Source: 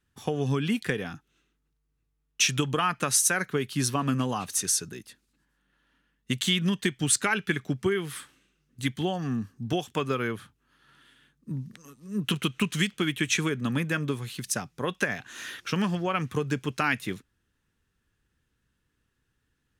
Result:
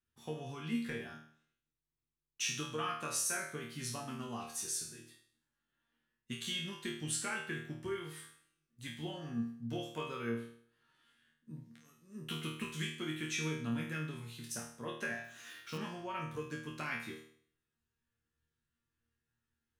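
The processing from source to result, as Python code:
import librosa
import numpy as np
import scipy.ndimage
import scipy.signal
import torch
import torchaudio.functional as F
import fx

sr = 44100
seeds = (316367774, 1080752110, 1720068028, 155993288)

y = fx.resonator_bank(x, sr, root=39, chord='fifth', decay_s=0.55)
y = fx.quant_float(y, sr, bits=2, at=(15.24, 15.78))
y = F.gain(torch.from_numpy(y), 1.5).numpy()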